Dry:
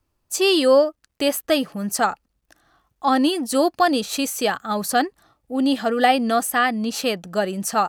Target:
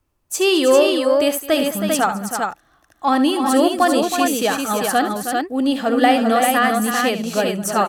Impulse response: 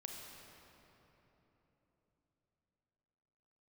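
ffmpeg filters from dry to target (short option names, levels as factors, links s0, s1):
-filter_complex "[0:a]equalizer=f=4600:w=2.8:g=-4.5,asplit=2[s0][s1];[s1]asoftclip=type=tanh:threshold=0.178,volume=0.251[s2];[s0][s2]amix=inputs=2:normalize=0,aecho=1:1:70|212|320|396:0.282|0.119|0.376|0.631"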